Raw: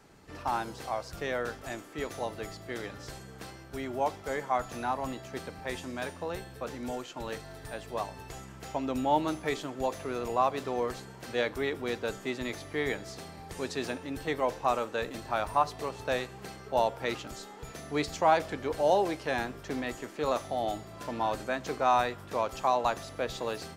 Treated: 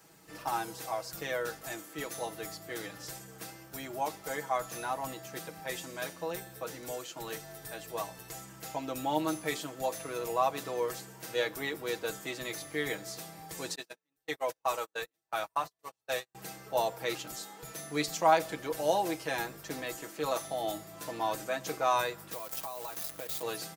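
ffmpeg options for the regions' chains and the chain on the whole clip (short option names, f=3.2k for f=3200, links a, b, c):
-filter_complex "[0:a]asettb=1/sr,asplit=3[a][b][c];[a]atrim=end=13.754[d];[b]atrim=start=13.75:end=16.35,asetpts=PTS-STARTPTS,afade=t=in:d=0.004:c=qsin,afade=t=out:st=2.596:d=0.004:c=qsin,equalizer=f=180:w=0.45:g=-6.5,agate=range=-42dB:threshold=-35dB:ratio=16:release=100:detection=peak[e];[c]atrim=start=16.346[f];[d][e]acrossfade=d=0.004:c1=hsin:c2=qsin[g];[g][f]acrossfade=d=0.004:c1=qsin:c2=hsin,asettb=1/sr,asplit=3[h][i][j];[h]atrim=end=22.324[k];[i]atrim=start=22.32:end=23.43,asetpts=PTS-STARTPTS,afade=t=in:d=0.004:c=qsin,afade=t=out:st=1.106:d=0.004:c=qsin,acrusher=bits=7:dc=4:mix=0:aa=0.000001,acompressor=threshold=-36dB:ratio=6:attack=3.2:release=140:knee=1:detection=peak,aeval=exprs='val(0)+0.001*(sin(2*PI*60*n/s)+sin(2*PI*2*60*n/s)/2+sin(2*PI*3*60*n/s)/3+sin(2*PI*4*60*n/s)/4+sin(2*PI*5*60*n/s)/5)':c=same[l];[j]atrim=start=23.426[m];[k][l]acrossfade=d=0.004:c1=hsin:c2=qsin[n];[n][m]acrossfade=d=0.004:c1=qsin:c2=hsin,highpass=f=120:p=1,aemphasis=mode=production:type=50fm,aecho=1:1:6.2:0.7,volume=-4dB"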